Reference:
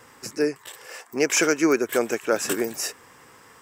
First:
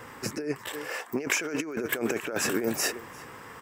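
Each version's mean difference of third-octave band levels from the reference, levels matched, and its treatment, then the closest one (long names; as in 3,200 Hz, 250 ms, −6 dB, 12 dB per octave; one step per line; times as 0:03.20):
9.5 dB: bass and treble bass +2 dB, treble −12 dB
single-tap delay 348 ms −23.5 dB
compressor whose output falls as the input rises −30 dBFS, ratio −1
high-shelf EQ 10,000 Hz +11 dB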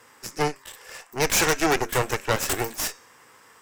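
4.5 dB: low-shelf EQ 350 Hz −8 dB
hum removal 269 Hz, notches 31
flanger 0.64 Hz, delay 8.6 ms, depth 3.4 ms, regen −75%
harmonic generator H 8 −11 dB, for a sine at −12 dBFS
level +3 dB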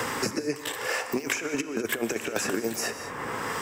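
12.5 dB: high-shelf EQ 3,300 Hz −7 dB
compressor whose output falls as the input rises −28 dBFS, ratio −0.5
reverb whose tail is shaped and stops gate 230 ms flat, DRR 11 dB
multiband upward and downward compressor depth 100%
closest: second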